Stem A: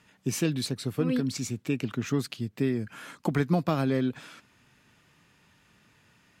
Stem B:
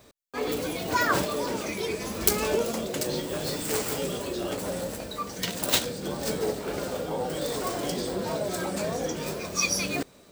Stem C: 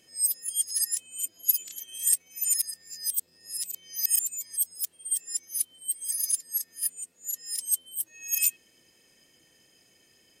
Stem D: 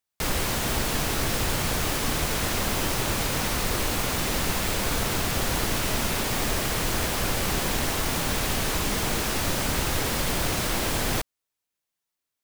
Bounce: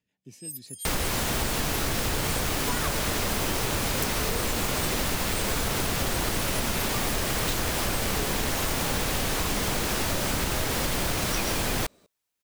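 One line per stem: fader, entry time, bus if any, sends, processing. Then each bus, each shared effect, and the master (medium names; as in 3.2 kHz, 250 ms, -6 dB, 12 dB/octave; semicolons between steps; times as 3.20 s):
-18.0 dB, 0.00 s, bus A, no send, peaking EQ 1.3 kHz -12.5 dB 0.54 oct; rotary cabinet horn 5.5 Hz
-6.5 dB, 1.75 s, no bus, no send, none
-13.0 dB, 0.25 s, bus A, no send, none
+2.5 dB, 0.65 s, no bus, no send, none
bus A: 0.0 dB, level rider gain up to 5 dB; peak limiter -28 dBFS, peak gain reduction 9.5 dB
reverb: none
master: compression, threshold -23 dBFS, peak gain reduction 5.5 dB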